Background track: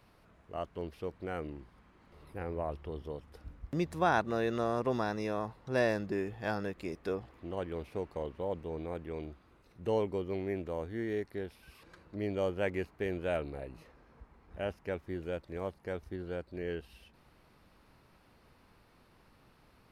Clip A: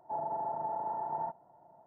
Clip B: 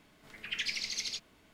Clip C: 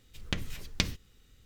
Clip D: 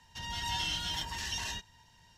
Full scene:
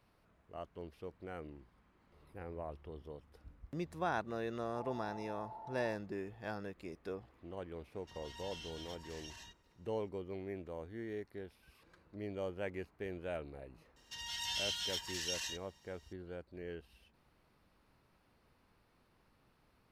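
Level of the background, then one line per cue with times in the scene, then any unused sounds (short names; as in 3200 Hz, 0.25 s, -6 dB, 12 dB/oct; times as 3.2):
background track -8 dB
4.65 add A -13.5 dB
7.92 add D -16 dB
13.96 add D -10 dB + tilt shelf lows -9 dB, about 1100 Hz
not used: B, C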